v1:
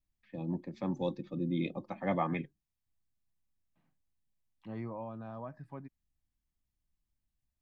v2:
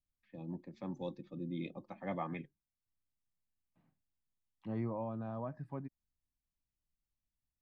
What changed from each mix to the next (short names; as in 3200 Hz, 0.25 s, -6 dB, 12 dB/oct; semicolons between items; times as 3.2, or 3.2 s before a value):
first voice -7.5 dB; second voice: add tilt shelf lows +3.5 dB, about 1100 Hz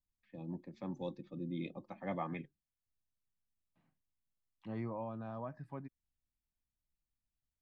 second voice: add tilt shelf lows -3.5 dB, about 1100 Hz